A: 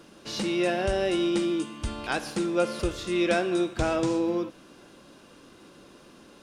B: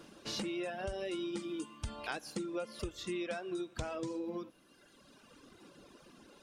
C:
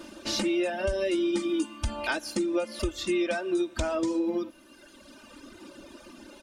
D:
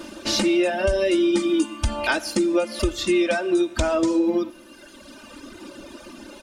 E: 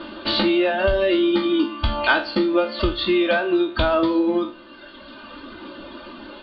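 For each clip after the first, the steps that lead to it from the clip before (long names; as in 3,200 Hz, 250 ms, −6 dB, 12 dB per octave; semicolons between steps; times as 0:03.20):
reverb reduction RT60 1.7 s; downward compressor 12 to 1, threshold −32 dBFS, peak gain reduction 13 dB; level −3 dB
comb filter 3.3 ms, depth 77%; level +8 dB
convolution reverb RT60 0.75 s, pre-delay 30 ms, DRR 19 dB; level +7 dB
peak hold with a decay on every bin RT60 0.31 s; Chebyshev low-pass with heavy ripple 4,600 Hz, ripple 6 dB; level +6 dB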